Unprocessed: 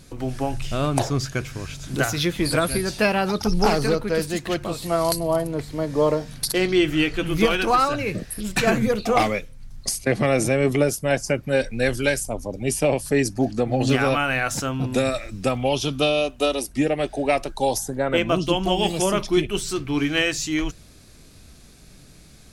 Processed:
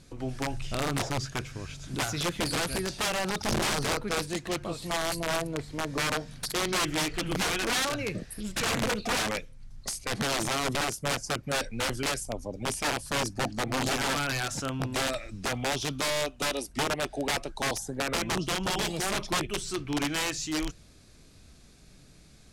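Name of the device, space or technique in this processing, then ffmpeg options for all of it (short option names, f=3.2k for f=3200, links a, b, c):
overflowing digital effects unit: -af "aeval=exprs='(mod(5.96*val(0)+1,2)-1)/5.96':c=same,lowpass=10k,volume=-6.5dB"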